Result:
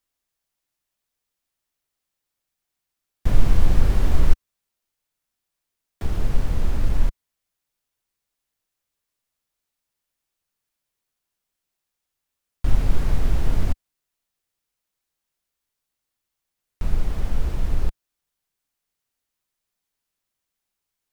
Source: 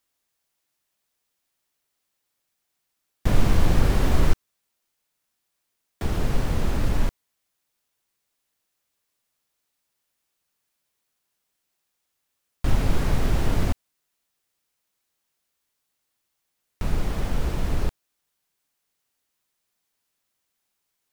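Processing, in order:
low-shelf EQ 70 Hz +10.5 dB
level −5 dB

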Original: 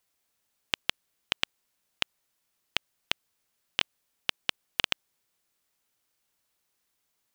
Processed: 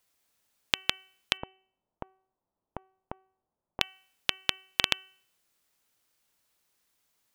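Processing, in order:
0:01.37–0:03.81: Chebyshev low-pass filter 900 Hz, order 3
hum removal 379.4 Hz, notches 8
level +2.5 dB

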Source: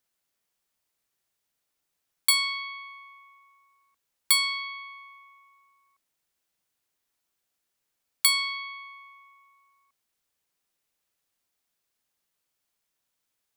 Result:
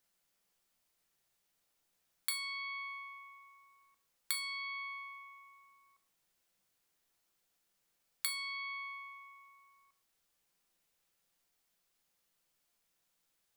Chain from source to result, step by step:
downward compressor 4 to 1, threshold −38 dBFS, peak gain reduction 18 dB
rectangular room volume 160 cubic metres, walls furnished, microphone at 0.79 metres

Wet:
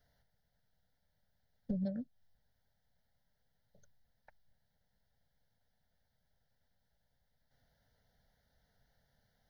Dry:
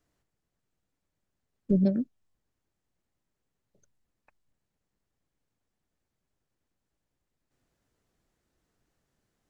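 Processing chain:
downward compressor 6 to 1, threshold −35 dBFS, peak gain reduction 15 dB
phaser with its sweep stopped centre 1,700 Hz, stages 8
level +5 dB

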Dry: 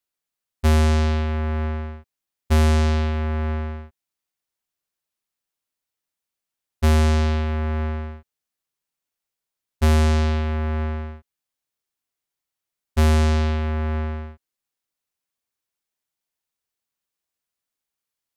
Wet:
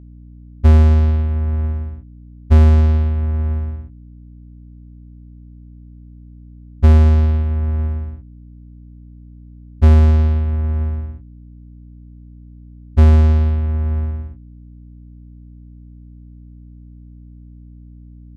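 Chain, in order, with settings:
RIAA equalisation playback
mains hum 60 Hz, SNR 20 dB
harmonic generator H 3 −18 dB, 4 −35 dB, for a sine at 4.5 dBFS
level −5 dB

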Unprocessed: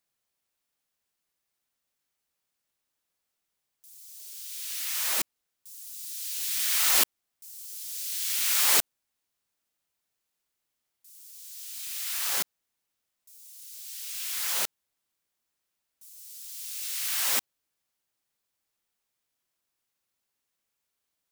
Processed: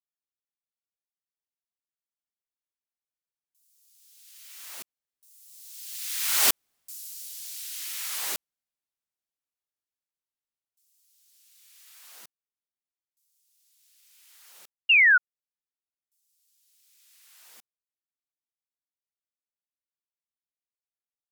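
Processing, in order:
source passing by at 0:06.78, 26 m/s, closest 5.4 metres
sound drawn into the spectrogram fall, 0:14.89–0:15.18, 1,400–2,900 Hz −24 dBFS
level +7 dB

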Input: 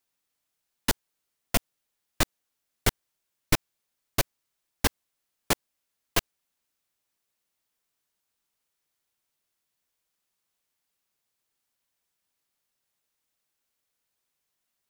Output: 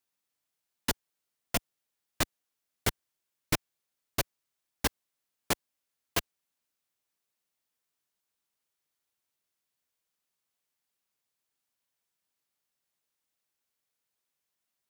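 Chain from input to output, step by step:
high-pass filter 58 Hz 6 dB per octave
level −4 dB

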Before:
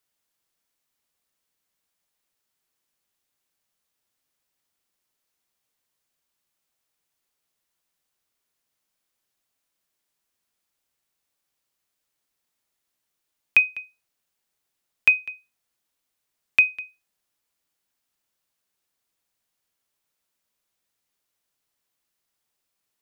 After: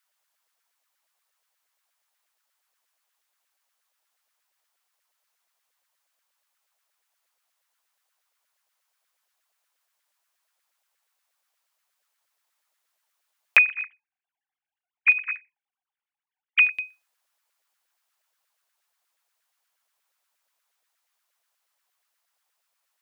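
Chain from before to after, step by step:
0:13.57–0:16.72: three sine waves on the formant tracks
auto-filter high-pass saw down 8.4 Hz 560–1,700 Hz
dynamic equaliser 1,500 Hz, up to −6 dB, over −29 dBFS, Q 0.86
level +2 dB

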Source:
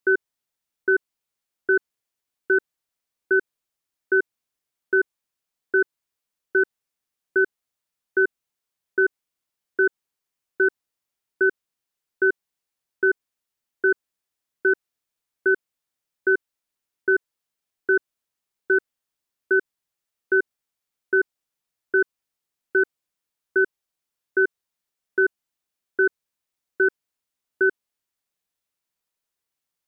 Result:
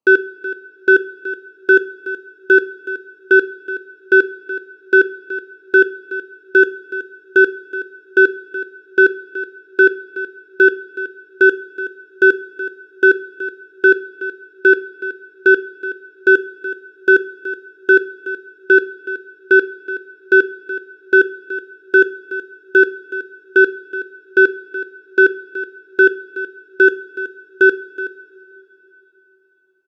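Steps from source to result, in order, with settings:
adaptive Wiener filter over 25 samples
high-pass filter 120 Hz 12 dB per octave
bass and treble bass −4 dB, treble +5 dB
single-tap delay 373 ms −14 dB
coupled-rooms reverb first 0.43 s, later 4.2 s, from −18 dB, DRR 11 dB
level +9 dB

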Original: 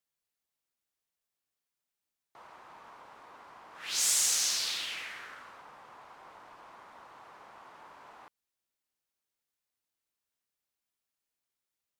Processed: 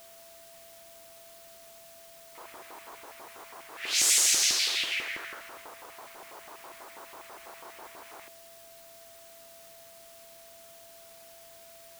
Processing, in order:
auto-filter high-pass square 6.1 Hz 360–2,200 Hz
echo ahead of the sound 57 ms −22 dB
in parallel at −5.5 dB: bit-depth reduction 8 bits, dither triangular
on the sum: steady tone 670 Hz −53 dBFS

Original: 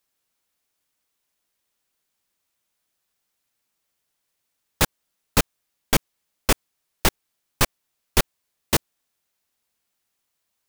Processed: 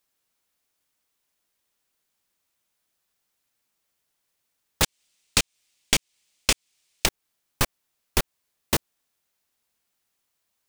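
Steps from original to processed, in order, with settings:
0:04.83–0:07.06: flat-topped bell 4,400 Hz +10.5 dB 2.4 octaves
downward compressor 5 to 1, threshold −18 dBFS, peak gain reduction 9.5 dB

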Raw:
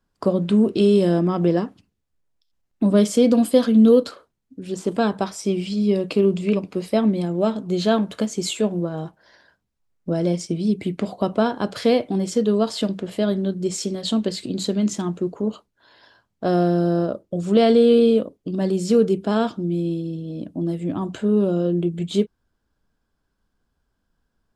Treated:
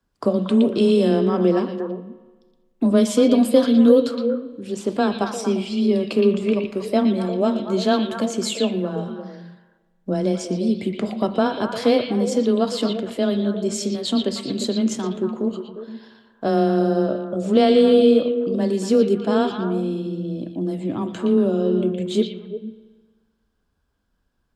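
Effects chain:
echo through a band-pass that steps 117 ms, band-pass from 3,100 Hz, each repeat −1.4 octaves, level −2 dB
spring reverb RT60 1.4 s, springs 31/43 ms, chirp 65 ms, DRR 13 dB
frequency shifter +13 Hz

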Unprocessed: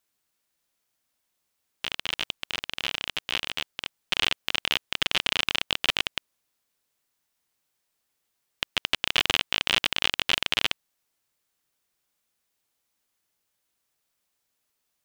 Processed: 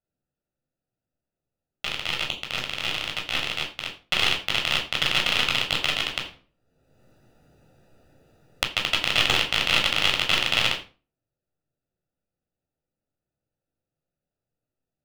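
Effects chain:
adaptive Wiener filter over 41 samples
convolution reverb RT60 0.35 s, pre-delay 12 ms, DRR 0.5 dB
0:05.83–0:08.68: multiband upward and downward compressor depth 100%
level −1 dB

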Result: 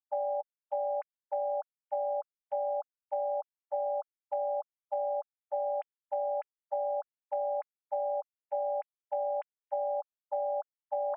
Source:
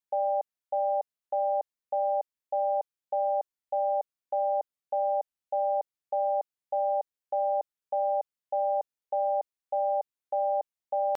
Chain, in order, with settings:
three sine waves on the formant tracks
downward compressor, threshold −29 dBFS, peak gain reduction 5 dB

